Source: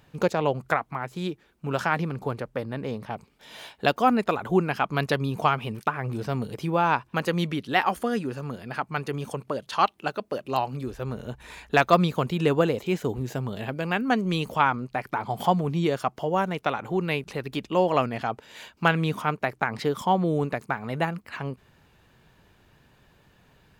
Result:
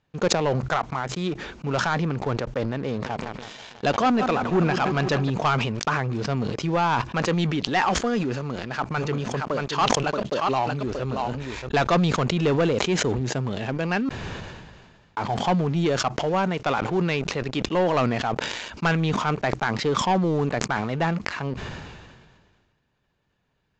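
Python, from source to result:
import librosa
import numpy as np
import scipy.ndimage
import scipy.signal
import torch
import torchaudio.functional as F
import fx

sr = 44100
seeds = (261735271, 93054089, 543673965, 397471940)

y = fx.echo_filtered(x, sr, ms=164, feedback_pct=75, hz=4500.0, wet_db=-14.5, at=(2.89, 5.3))
y = fx.echo_single(y, sr, ms=630, db=-5.5, at=(8.34, 11.69))
y = fx.edit(y, sr, fx.room_tone_fill(start_s=14.09, length_s=1.08), tone=tone)
y = fx.leveller(y, sr, passes=3)
y = scipy.signal.sosfilt(scipy.signal.butter(12, 7300.0, 'lowpass', fs=sr, output='sos'), y)
y = fx.sustainer(y, sr, db_per_s=34.0)
y = y * librosa.db_to_amplitude(-8.5)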